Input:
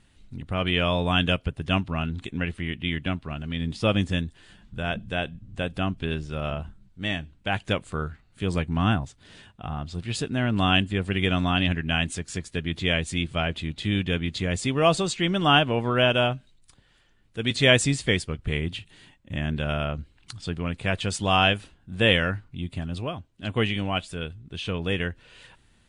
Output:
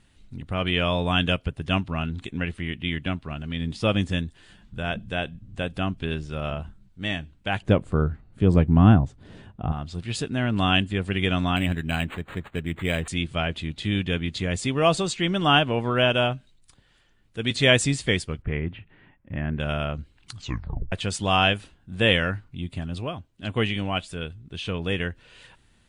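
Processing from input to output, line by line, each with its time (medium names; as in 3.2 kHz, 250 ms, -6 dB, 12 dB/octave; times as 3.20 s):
7.62–9.72 s: tilt shelf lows +9 dB, about 1.3 kHz
11.56–13.08 s: decimation joined by straight lines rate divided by 8×
18.42–19.60 s: low-pass 2.2 kHz 24 dB/octave
20.36 s: tape stop 0.56 s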